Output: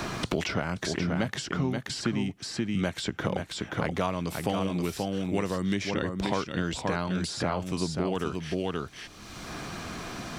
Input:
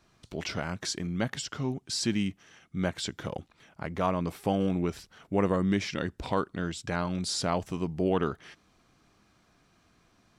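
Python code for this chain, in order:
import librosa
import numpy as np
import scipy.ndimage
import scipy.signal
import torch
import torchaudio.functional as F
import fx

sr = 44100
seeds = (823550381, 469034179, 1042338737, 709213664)

y = fx.rider(x, sr, range_db=5, speed_s=0.5)
y = y + 10.0 ** (-6.0 / 20.0) * np.pad(y, (int(529 * sr / 1000.0), 0))[:len(y)]
y = fx.band_squash(y, sr, depth_pct=100)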